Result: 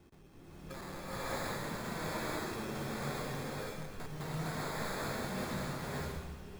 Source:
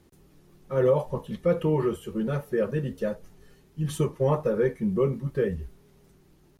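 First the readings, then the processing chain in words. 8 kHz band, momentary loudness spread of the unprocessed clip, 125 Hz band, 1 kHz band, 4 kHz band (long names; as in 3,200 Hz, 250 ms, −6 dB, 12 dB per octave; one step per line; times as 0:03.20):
+1.5 dB, 9 LU, −12.0 dB, −3.0 dB, +3.5 dB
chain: sample-rate reduction 2,900 Hz, jitter 0%
wrap-around overflow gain 20.5 dB
downward compressor 10 to 1, threshold −45 dBFS, peak gain reduction 21 dB
slow-attack reverb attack 620 ms, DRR −11 dB
level −2 dB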